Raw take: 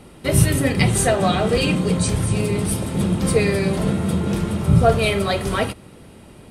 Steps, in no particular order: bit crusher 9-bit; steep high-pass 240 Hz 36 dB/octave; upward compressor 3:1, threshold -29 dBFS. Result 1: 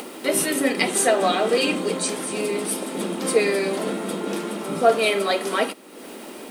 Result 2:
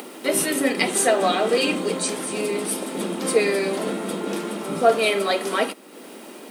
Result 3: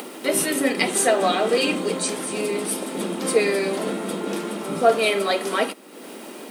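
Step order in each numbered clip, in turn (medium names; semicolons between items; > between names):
steep high-pass > bit crusher > upward compressor; bit crusher > upward compressor > steep high-pass; bit crusher > steep high-pass > upward compressor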